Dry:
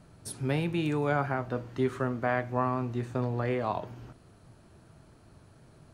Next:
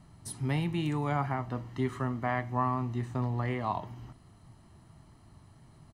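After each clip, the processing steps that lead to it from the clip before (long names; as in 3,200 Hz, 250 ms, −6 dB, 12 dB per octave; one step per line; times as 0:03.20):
comb filter 1 ms, depth 57%
level −2.5 dB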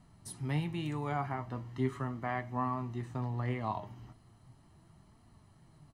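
flanger 0.38 Hz, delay 4 ms, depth 6.3 ms, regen +68%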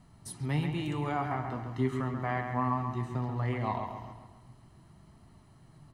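delay with a low-pass on its return 135 ms, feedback 48%, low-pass 3,700 Hz, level −6 dB
level +2.5 dB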